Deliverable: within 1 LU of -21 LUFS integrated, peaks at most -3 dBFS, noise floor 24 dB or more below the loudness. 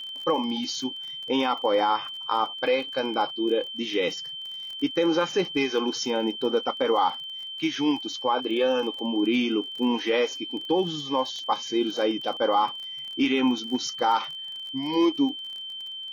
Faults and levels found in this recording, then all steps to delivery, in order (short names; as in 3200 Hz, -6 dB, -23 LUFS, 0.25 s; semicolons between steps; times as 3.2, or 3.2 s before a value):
ticks 29/s; steady tone 3100 Hz; tone level -34 dBFS; loudness -26.0 LUFS; peak -12.0 dBFS; loudness target -21.0 LUFS
-> de-click; notch 3100 Hz, Q 30; gain +5 dB